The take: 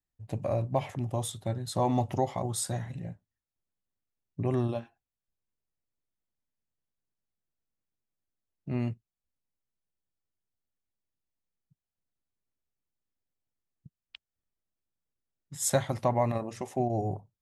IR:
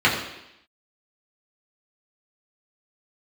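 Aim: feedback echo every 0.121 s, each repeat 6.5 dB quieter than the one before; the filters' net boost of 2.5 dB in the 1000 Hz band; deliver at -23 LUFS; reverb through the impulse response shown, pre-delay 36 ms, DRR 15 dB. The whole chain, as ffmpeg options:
-filter_complex "[0:a]equalizer=f=1k:t=o:g=3.5,aecho=1:1:121|242|363|484|605|726:0.473|0.222|0.105|0.0491|0.0231|0.0109,asplit=2[a][b];[1:a]atrim=start_sample=2205,adelay=36[c];[b][c]afir=irnorm=-1:irlink=0,volume=-35.5dB[d];[a][d]amix=inputs=2:normalize=0,volume=6.5dB"

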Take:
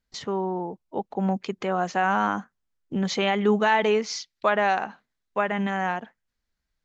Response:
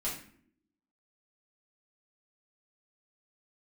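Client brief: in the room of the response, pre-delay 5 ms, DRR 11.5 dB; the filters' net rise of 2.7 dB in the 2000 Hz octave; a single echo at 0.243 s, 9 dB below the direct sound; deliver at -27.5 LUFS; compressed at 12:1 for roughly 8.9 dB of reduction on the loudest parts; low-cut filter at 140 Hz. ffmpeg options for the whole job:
-filter_complex "[0:a]highpass=140,equalizer=f=2k:t=o:g=3.5,acompressor=threshold=-24dB:ratio=12,aecho=1:1:243:0.355,asplit=2[a][b];[1:a]atrim=start_sample=2205,adelay=5[c];[b][c]afir=irnorm=-1:irlink=0,volume=-15dB[d];[a][d]amix=inputs=2:normalize=0,volume=2dB"

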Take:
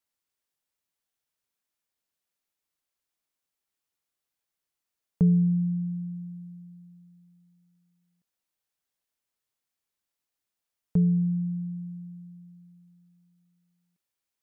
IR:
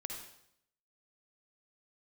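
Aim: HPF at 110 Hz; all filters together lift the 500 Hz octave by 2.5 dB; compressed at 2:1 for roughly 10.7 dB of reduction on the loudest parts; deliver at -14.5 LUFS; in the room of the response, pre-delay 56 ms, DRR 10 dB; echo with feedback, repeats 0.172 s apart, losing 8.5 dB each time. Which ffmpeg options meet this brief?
-filter_complex "[0:a]highpass=110,equalizer=f=500:t=o:g=3,acompressor=threshold=-38dB:ratio=2,aecho=1:1:172|344|516|688:0.376|0.143|0.0543|0.0206,asplit=2[a][b];[1:a]atrim=start_sample=2205,adelay=56[c];[b][c]afir=irnorm=-1:irlink=0,volume=-9dB[d];[a][d]amix=inputs=2:normalize=0,volume=20dB"

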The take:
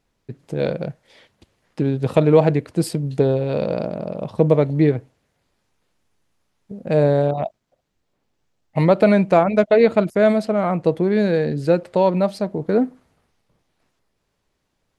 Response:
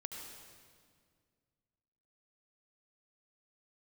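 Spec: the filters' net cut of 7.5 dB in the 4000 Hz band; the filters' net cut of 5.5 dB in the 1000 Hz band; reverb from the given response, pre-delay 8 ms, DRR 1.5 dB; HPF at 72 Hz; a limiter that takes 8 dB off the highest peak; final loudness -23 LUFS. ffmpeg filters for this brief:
-filter_complex "[0:a]highpass=72,equalizer=f=1k:t=o:g=-8,equalizer=f=4k:t=o:g=-8.5,alimiter=limit=-11.5dB:level=0:latency=1,asplit=2[a][b];[1:a]atrim=start_sample=2205,adelay=8[c];[b][c]afir=irnorm=-1:irlink=0,volume=0.5dB[d];[a][d]amix=inputs=2:normalize=0,volume=-2dB"

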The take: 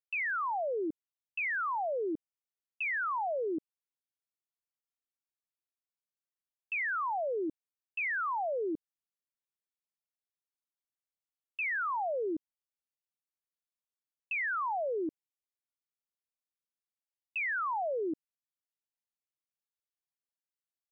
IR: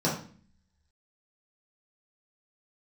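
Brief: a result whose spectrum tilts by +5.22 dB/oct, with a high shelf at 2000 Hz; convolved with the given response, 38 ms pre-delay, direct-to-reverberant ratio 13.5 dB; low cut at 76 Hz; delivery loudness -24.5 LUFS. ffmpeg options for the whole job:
-filter_complex "[0:a]highpass=76,highshelf=f=2k:g=6,asplit=2[a][b];[1:a]atrim=start_sample=2205,adelay=38[c];[b][c]afir=irnorm=-1:irlink=0,volume=-24.5dB[d];[a][d]amix=inputs=2:normalize=0,volume=7dB"

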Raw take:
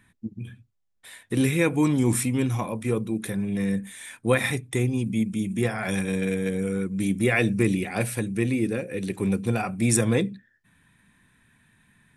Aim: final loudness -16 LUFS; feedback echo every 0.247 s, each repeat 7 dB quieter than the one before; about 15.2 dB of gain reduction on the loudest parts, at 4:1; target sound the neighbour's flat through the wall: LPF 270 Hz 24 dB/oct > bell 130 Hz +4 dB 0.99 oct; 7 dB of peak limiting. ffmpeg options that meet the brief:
-af "acompressor=threshold=-36dB:ratio=4,alimiter=level_in=4.5dB:limit=-24dB:level=0:latency=1,volume=-4.5dB,lowpass=f=270:w=0.5412,lowpass=f=270:w=1.3066,equalizer=f=130:t=o:w=0.99:g=4,aecho=1:1:247|494|741|988|1235:0.447|0.201|0.0905|0.0407|0.0183,volume=22.5dB"

